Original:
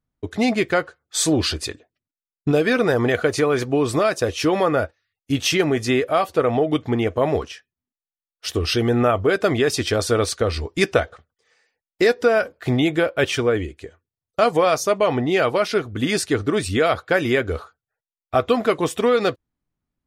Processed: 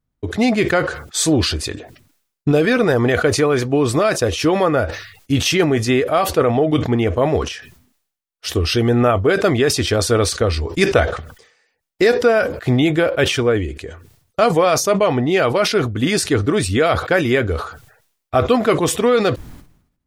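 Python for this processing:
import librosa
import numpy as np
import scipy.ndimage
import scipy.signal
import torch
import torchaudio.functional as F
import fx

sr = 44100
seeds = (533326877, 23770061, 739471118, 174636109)

y = fx.low_shelf(x, sr, hz=190.0, db=4.0)
y = fx.sustainer(y, sr, db_per_s=85.0)
y = y * librosa.db_to_amplitude(2.0)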